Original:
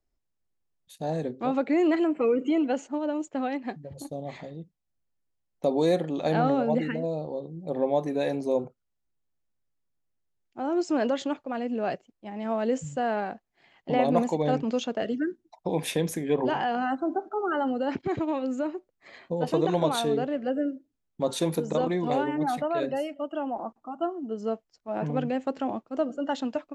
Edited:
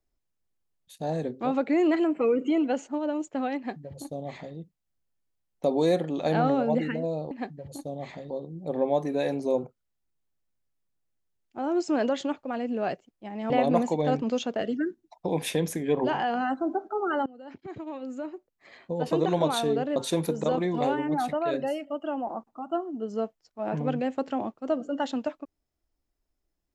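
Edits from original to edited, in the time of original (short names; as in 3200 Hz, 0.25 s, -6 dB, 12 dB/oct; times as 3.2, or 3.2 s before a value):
3.57–4.56 copy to 7.31
12.51–13.91 cut
17.67–19.69 fade in, from -23 dB
20.37–21.25 cut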